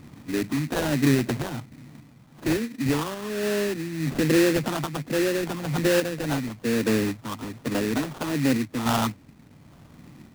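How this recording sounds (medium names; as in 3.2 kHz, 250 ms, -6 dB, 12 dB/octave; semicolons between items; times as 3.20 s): phasing stages 4, 1.2 Hz, lowest notch 460–1700 Hz; random-step tremolo; aliases and images of a low sample rate 2.2 kHz, jitter 20%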